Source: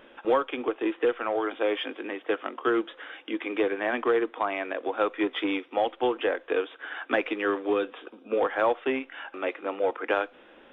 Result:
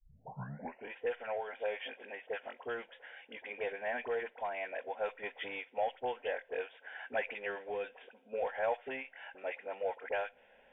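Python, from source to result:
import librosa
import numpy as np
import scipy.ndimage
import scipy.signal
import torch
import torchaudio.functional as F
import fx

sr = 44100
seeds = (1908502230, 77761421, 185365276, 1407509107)

y = fx.tape_start_head(x, sr, length_s=0.9)
y = fx.fixed_phaser(y, sr, hz=1200.0, stages=6)
y = fx.dispersion(y, sr, late='highs', ms=49.0, hz=1000.0)
y = y * 10.0 ** (-7.0 / 20.0)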